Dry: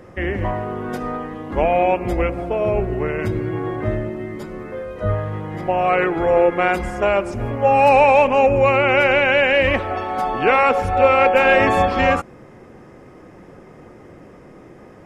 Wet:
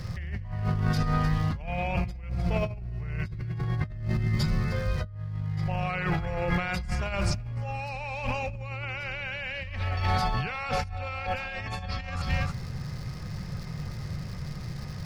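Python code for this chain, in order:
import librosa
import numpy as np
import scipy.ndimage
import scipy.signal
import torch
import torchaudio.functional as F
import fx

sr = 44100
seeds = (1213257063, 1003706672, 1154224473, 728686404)

y = fx.dmg_crackle(x, sr, seeds[0], per_s=320.0, level_db=-46.0)
y = fx.curve_eq(y, sr, hz=(150.0, 300.0, 3200.0, 4600.0, 7300.0), db=(0, -27, -6, 8, -3))
y = y + 10.0 ** (-16.5 / 20.0) * np.pad(y, (int(304 * sr / 1000.0), 0))[:len(y)]
y = fx.over_compress(y, sr, threshold_db=-38.0, ratio=-1.0)
y = fx.high_shelf(y, sr, hz=4300.0, db=-9.5)
y = y * 10.0 ** (7.5 / 20.0)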